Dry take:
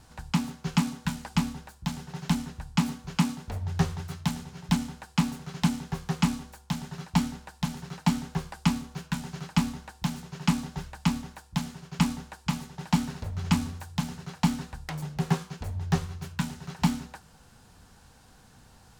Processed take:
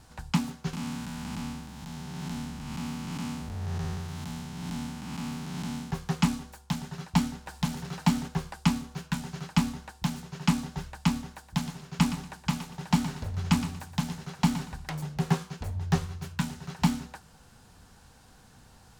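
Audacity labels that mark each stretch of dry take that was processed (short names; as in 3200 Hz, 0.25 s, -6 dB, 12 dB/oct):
0.730000	5.910000	time blur width 0.289 s
7.460000	8.280000	G.711 law mismatch coded by mu
11.310000	14.940000	feedback echo 0.119 s, feedback 26%, level -11.5 dB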